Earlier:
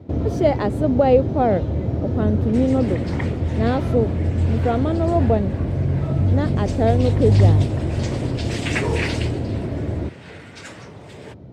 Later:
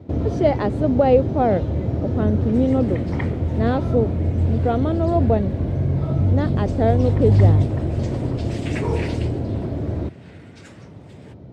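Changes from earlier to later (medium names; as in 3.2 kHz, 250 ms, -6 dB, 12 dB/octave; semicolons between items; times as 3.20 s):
speech: add distance through air 71 m; second sound -9.0 dB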